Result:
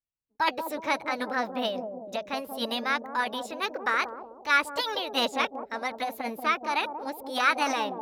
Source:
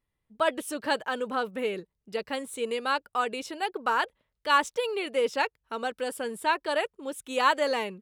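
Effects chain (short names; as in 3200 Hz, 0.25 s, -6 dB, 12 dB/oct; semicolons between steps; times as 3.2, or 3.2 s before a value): formant shift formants +5 st; high shelf 6700 Hz -6 dB; on a send: analogue delay 0.185 s, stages 1024, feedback 52%, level -5.5 dB; on the sum: gate with hold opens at -44 dBFS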